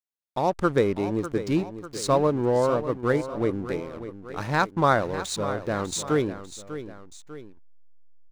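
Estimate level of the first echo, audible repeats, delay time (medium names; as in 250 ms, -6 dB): -12.0 dB, 2, 597 ms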